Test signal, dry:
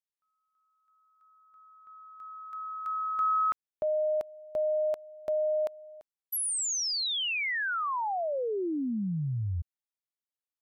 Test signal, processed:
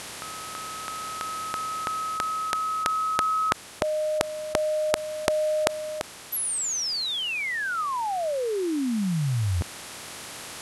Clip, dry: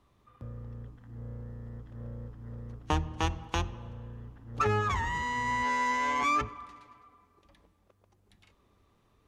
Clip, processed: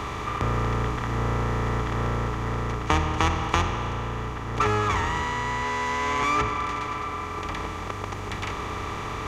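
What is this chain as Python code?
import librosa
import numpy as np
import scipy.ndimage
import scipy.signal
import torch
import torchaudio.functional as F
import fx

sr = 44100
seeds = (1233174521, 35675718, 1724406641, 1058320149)

y = fx.bin_compress(x, sr, power=0.4)
y = fx.rider(y, sr, range_db=5, speed_s=2.0)
y = y * 10.0 ** (2.0 / 20.0)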